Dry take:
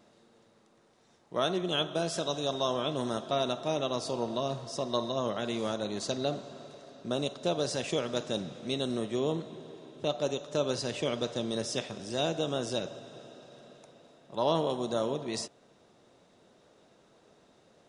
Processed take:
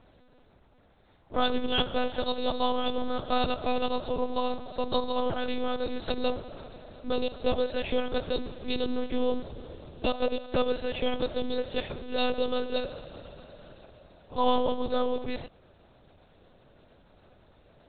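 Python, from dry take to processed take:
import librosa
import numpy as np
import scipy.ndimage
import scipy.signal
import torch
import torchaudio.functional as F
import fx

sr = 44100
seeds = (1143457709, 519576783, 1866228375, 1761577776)

y = fx.lpc_monotone(x, sr, seeds[0], pitch_hz=250.0, order=8)
y = F.gain(torch.from_numpy(y), 4.0).numpy()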